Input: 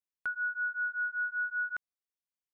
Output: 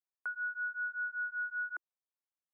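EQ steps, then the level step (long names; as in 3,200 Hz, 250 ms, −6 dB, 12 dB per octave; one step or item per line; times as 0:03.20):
Chebyshev high-pass filter 340 Hz, order 4
low-pass filter 1,600 Hz 12 dB per octave
parametric band 1,100 Hz +6.5 dB 2.3 octaves
−7.0 dB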